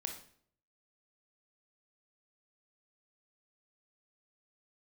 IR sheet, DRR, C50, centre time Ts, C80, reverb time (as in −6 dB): 3.5 dB, 7.0 dB, 21 ms, 11.5 dB, 0.60 s